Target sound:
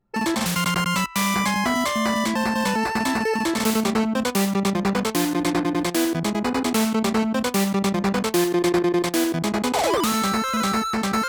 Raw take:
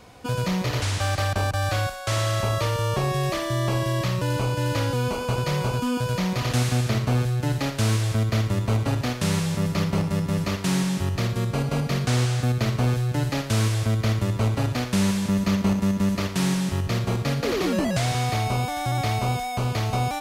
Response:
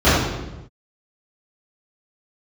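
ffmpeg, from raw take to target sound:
-af "lowshelf=frequency=120:gain=-7,asetrate=78939,aresample=44100,anlmdn=25.1,volume=4dB"

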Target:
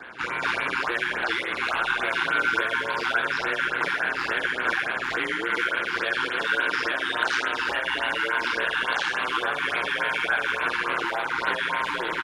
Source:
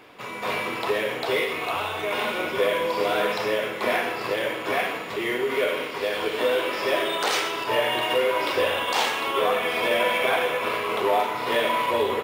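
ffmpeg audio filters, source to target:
ffmpeg -i in.wav -filter_complex "[0:a]highpass=120,equalizer=frequency=270:width_type=q:width=4:gain=-4,equalizer=frequency=510:width_type=q:width=4:gain=-5,equalizer=frequency=1600:width_type=q:width=4:gain=6,equalizer=frequency=7800:width_type=q:width=4:gain=-6,lowpass=frequency=8400:width=0.5412,lowpass=frequency=8400:width=1.3066,acrossover=split=760|6500[link_01][link_02][link_03];[link_03]asoftclip=type=hard:threshold=-39dB[link_04];[link_01][link_02][link_04]amix=inputs=3:normalize=0,alimiter=limit=-17dB:level=0:latency=1:release=463,asplit=2[link_05][link_06];[link_06]adelay=340,highpass=300,lowpass=3400,asoftclip=type=hard:threshold=-26dB,volume=-10dB[link_07];[link_05][link_07]amix=inputs=2:normalize=0,acrossover=split=230|940|3900[link_08][link_09][link_10][link_11];[link_08]acompressor=threshold=-52dB:ratio=4[link_12];[link_09]acompressor=threshold=-40dB:ratio=4[link_13];[link_10]acompressor=threshold=-33dB:ratio=4[link_14];[link_11]acompressor=threshold=-43dB:ratio=4[link_15];[link_12][link_13][link_14][link_15]amix=inputs=4:normalize=0,equalizer=frequency=1500:width_type=o:width=0.21:gain=12,aeval=exprs='val(0)*sin(2*PI*60*n/s)':channel_layout=same,afftfilt=real='re*(1-between(b*sr/1024,520*pow(6600/520,0.5+0.5*sin(2*PI*3.5*pts/sr))/1.41,520*pow(6600/520,0.5+0.5*sin(2*PI*3.5*pts/sr))*1.41))':imag='im*(1-between(b*sr/1024,520*pow(6600/520,0.5+0.5*sin(2*PI*3.5*pts/sr))/1.41,520*pow(6600/520,0.5+0.5*sin(2*PI*3.5*pts/sr))*1.41))':win_size=1024:overlap=0.75,volume=8dB" out.wav

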